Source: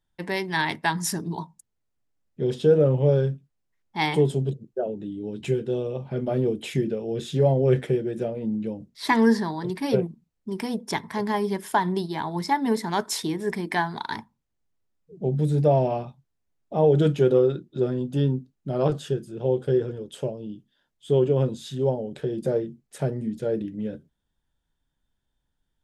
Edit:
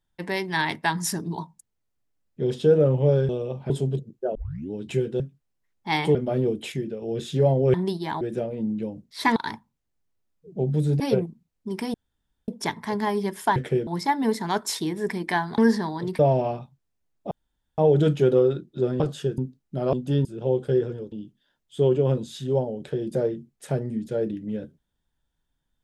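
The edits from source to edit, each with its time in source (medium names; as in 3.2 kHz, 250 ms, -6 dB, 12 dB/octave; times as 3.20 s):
3.29–4.24 s: swap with 5.74–6.15 s
4.89 s: tape start 0.35 s
6.72–7.02 s: gain -5 dB
7.74–8.05 s: swap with 11.83–12.30 s
9.20–9.81 s: swap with 14.01–15.65 s
10.75 s: insert room tone 0.54 s
16.77 s: insert room tone 0.47 s
17.99–18.31 s: swap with 18.86–19.24 s
20.11–20.43 s: delete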